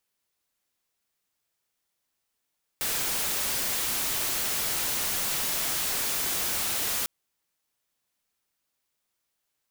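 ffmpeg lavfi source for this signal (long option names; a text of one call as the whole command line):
ffmpeg -f lavfi -i "anoisesrc=color=white:amplitude=0.0651:duration=4.25:sample_rate=44100:seed=1" out.wav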